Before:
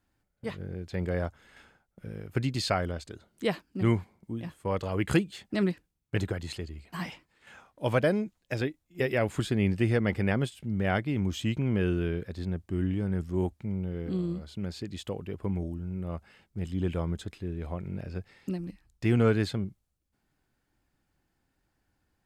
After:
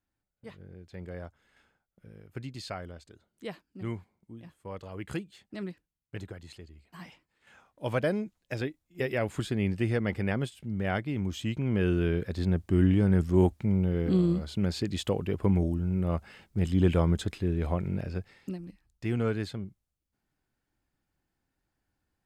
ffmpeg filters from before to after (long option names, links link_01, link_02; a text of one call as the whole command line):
ffmpeg -i in.wav -af "volume=6.5dB,afade=type=in:start_time=7.07:duration=1.07:silence=0.398107,afade=type=in:start_time=11.56:duration=1.1:silence=0.354813,afade=type=out:start_time=17.7:duration=0.89:silence=0.251189" out.wav